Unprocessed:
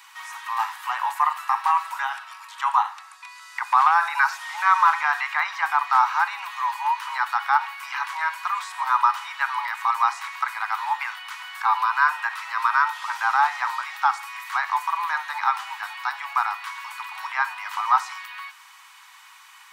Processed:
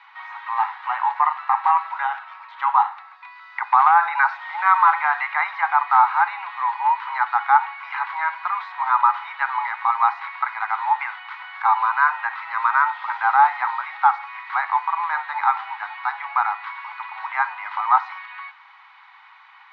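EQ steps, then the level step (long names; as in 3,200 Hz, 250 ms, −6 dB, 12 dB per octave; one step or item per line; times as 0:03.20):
loudspeaker in its box 500–4,200 Hz, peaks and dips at 820 Hz +6 dB, 1,400 Hz +4 dB, 2,100 Hz +8 dB, 3,900 Hz +5 dB
spectral tilt −5 dB per octave
0.0 dB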